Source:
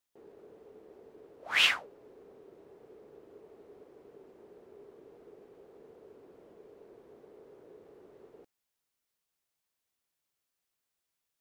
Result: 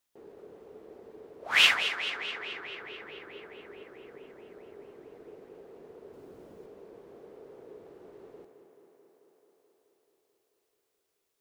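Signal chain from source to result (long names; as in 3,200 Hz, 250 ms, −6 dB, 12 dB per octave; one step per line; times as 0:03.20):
0:06.13–0:06.66: bass and treble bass +6 dB, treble +5 dB
on a send: tape delay 217 ms, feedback 80%, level −8.5 dB, low-pass 5,400 Hz
on the sum: level +4 dB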